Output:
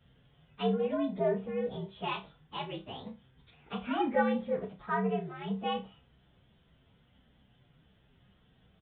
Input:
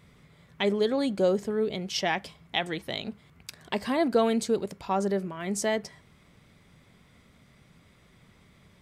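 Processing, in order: frequency axis rescaled in octaves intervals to 120%; 3.78–5.28 s: dynamic bell 1.7 kHz, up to +5 dB, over -47 dBFS, Q 1.7; resampled via 8 kHz; on a send: flutter echo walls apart 5.3 m, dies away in 0.22 s; on the sum: trim -3.5 dB

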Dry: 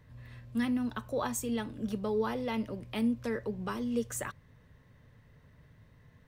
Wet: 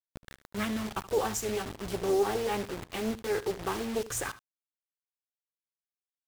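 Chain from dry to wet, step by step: pitch bend over the whole clip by -2.5 st ending unshifted; comb 2.5 ms, depth 54%; bit crusher 7-bit; on a send: delay 74 ms -16.5 dB; on the sum: loudspeaker Doppler distortion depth 0.51 ms; trim +3.5 dB

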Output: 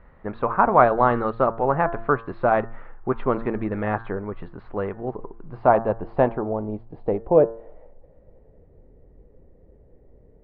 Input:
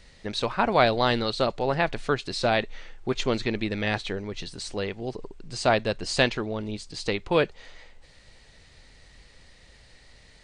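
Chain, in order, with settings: Gaussian low-pass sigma 2.9 samples; de-hum 113.8 Hz, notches 16; low-pass sweep 1.2 kHz -> 440 Hz, 5.11–8.89 s; trim +2.5 dB

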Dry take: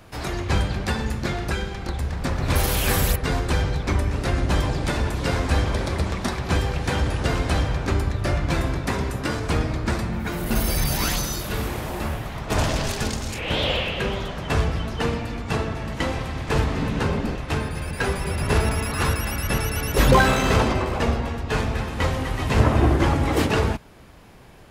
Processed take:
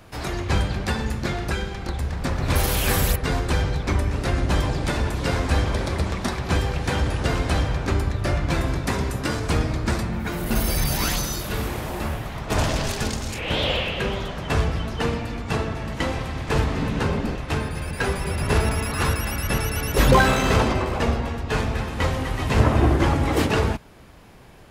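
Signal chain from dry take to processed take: 8.68–10.03 s: tone controls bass +1 dB, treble +3 dB

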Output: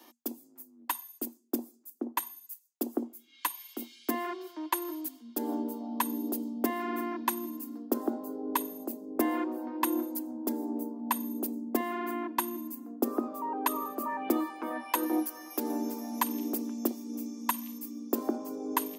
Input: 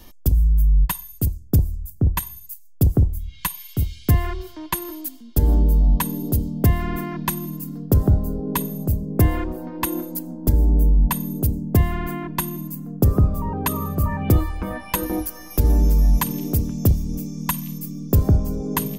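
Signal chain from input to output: rippled Chebyshev high-pass 230 Hz, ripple 6 dB; trim -2 dB

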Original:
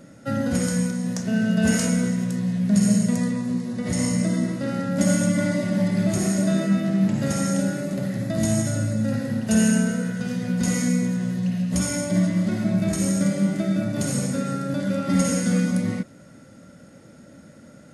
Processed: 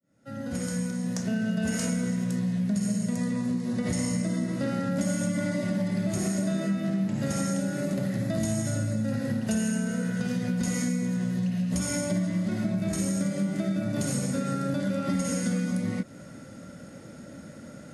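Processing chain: fade-in on the opening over 2.09 s; compression, threshold -28 dBFS, peak gain reduction 13.5 dB; trim +3 dB

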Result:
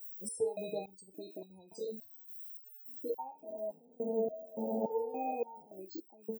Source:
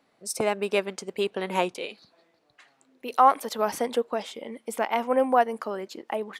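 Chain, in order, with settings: 3.35–5.79 s: spectral blur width 473 ms; Chebyshev band-stop 840–3900 Hz, order 4; peaking EQ 1.2 kHz -13 dB 1.7 oct; early reflections 11 ms -9 dB, 42 ms -10 dB; added noise violet -44 dBFS; compression 3:1, threshold -36 dBFS, peak gain reduction 11.5 dB; whistle 2.5 kHz -57 dBFS; fifteen-band graphic EQ 100 Hz +9 dB, 1 kHz +9 dB, 2.5 kHz -8 dB; loudest bins only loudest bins 32; resonator arpeggio 3.5 Hz 110–1300 Hz; trim +15.5 dB

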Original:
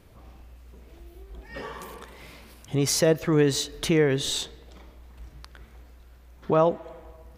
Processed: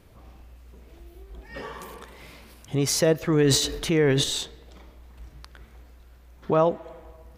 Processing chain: 3.30–4.24 s: transient shaper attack -2 dB, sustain +10 dB

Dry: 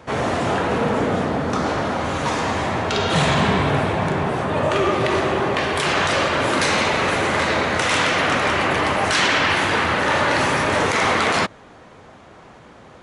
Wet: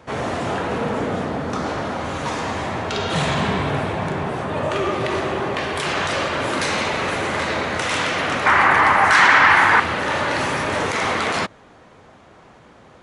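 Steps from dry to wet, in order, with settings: 8.46–9.80 s: high-order bell 1.3 kHz +11 dB; trim -3 dB

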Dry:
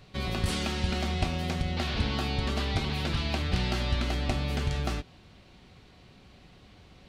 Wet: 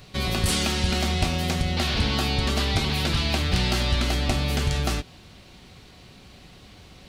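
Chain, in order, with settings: treble shelf 5.3 kHz +10.5 dB; saturation -16 dBFS, distortion -24 dB; trim +5.5 dB

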